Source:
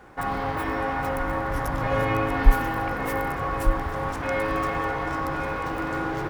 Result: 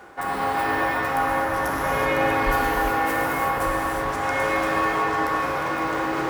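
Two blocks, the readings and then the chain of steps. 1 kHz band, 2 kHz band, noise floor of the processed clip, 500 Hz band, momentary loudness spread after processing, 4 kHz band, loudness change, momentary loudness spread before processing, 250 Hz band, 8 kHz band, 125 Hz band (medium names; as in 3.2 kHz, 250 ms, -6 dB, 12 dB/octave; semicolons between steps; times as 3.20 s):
+5.0 dB, +5.5 dB, -27 dBFS, +3.0 dB, 4 LU, +6.0 dB, +3.5 dB, 6 LU, +1.5 dB, +7.5 dB, -5.0 dB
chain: tone controls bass -9 dB, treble +2 dB; gated-style reverb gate 400 ms flat, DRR -4 dB; reverse; upward compressor, threshold -26 dBFS; reverse; high-pass 47 Hz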